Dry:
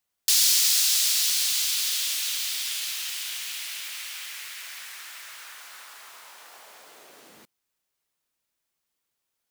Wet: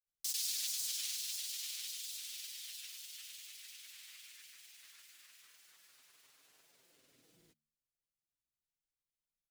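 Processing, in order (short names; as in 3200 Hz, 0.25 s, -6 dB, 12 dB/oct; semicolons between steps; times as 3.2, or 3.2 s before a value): passive tone stack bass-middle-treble 10-0-1; comb 6.7 ms, depth 73%; grains, pitch spread up and down by 3 st; de-hum 75.65 Hz, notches 3; gain +4 dB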